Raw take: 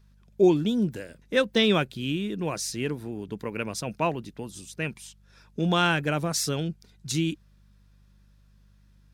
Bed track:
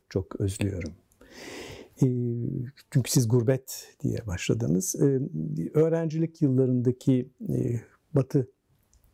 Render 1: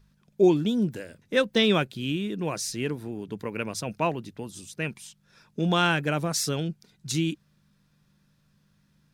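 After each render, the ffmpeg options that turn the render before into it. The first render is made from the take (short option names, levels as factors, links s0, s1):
-af "bandreject=f=50:t=h:w=4,bandreject=f=100:t=h:w=4"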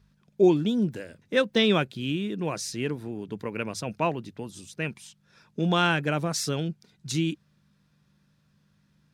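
-af "highpass=41,highshelf=f=9200:g=-8"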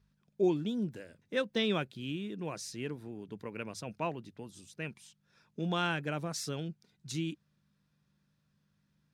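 -af "volume=0.355"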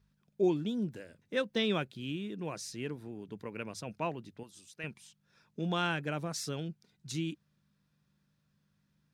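-filter_complex "[0:a]asettb=1/sr,asplit=3[s0][s1][s2];[s0]atrim=end=4.434[s3];[s1]atrim=start=4.43:end=4.84,asetpts=PTS-STARTPTS,afade=t=in:d=0.004:c=qsin,afade=t=out:st=0.406:d=0.004:c=qsin,lowshelf=f=470:g=-11[s4];[s2]atrim=start=4.836[s5];[s3][s4]acrossfade=d=0.004:c1=hsin:c2=qsin[s6];[s6][s5]acrossfade=d=0.004:c1=qsin:c2=hsin"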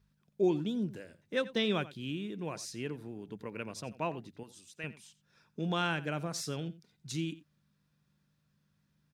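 -filter_complex "[0:a]asplit=2[s0][s1];[s1]adelay=87.46,volume=0.141,highshelf=f=4000:g=-1.97[s2];[s0][s2]amix=inputs=2:normalize=0"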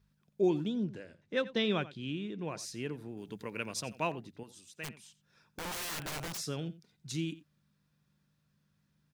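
-filter_complex "[0:a]asettb=1/sr,asplit=3[s0][s1][s2];[s0]atrim=end=0.684[s3];[s1]atrim=start=0.68:end=2.58,asetpts=PTS-STARTPTS,afade=t=in:d=0.004:c=qsin,afade=t=out:st=1.896:d=0.004:c=qsin,lowpass=5800[s4];[s2]atrim=start=2.576[s5];[s3][s4]acrossfade=d=0.004:c1=hsin:c2=qsin[s6];[s6][s5]acrossfade=d=0.004:c1=qsin:c2=hsin,asettb=1/sr,asplit=3[s7][s8][s9];[s7]atrim=end=3.174[s10];[s8]atrim=start=3.17:end=4.12,asetpts=PTS-STARTPTS,afade=t=in:d=0.004:c=qsin,afade=t=out:st=0.946:d=0.004:c=qsin,highshelf=f=2100:g=9[s11];[s9]atrim=start=4.116[s12];[s10][s11]acrossfade=d=0.004:c1=hsin:c2=qsin[s13];[s13][s12]acrossfade=d=0.004:c1=qsin:c2=hsin,asplit=3[s14][s15][s16];[s14]afade=t=out:st=4.83:d=0.02[s17];[s15]aeval=exprs='(mod(50.1*val(0)+1,2)-1)/50.1':c=same,afade=t=in:st=4.83:d=0.02,afade=t=out:st=6.37:d=0.02[s18];[s16]afade=t=in:st=6.37:d=0.02[s19];[s17][s18][s19]amix=inputs=3:normalize=0"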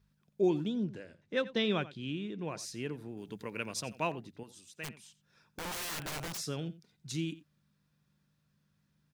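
-af anull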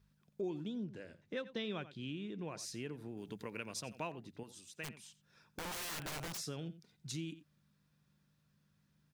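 -af "acompressor=threshold=0.00794:ratio=2.5"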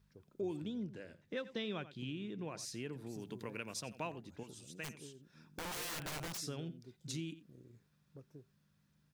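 -filter_complex "[1:a]volume=0.0251[s0];[0:a][s0]amix=inputs=2:normalize=0"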